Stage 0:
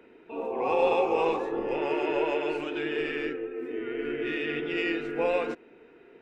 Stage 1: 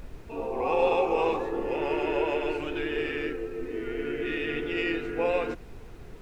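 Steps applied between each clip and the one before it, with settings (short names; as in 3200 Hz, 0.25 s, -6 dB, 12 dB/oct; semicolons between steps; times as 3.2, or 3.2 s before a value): added noise brown -42 dBFS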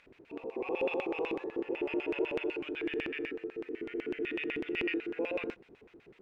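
LFO band-pass square 8 Hz 340–2400 Hz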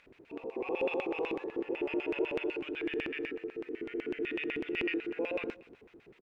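echo 0.234 s -22.5 dB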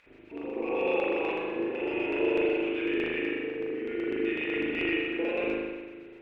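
spring tank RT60 1.4 s, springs 38 ms, chirp 65 ms, DRR -5 dB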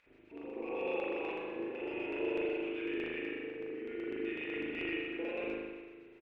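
echo 0.34 s -21 dB; gain -8.5 dB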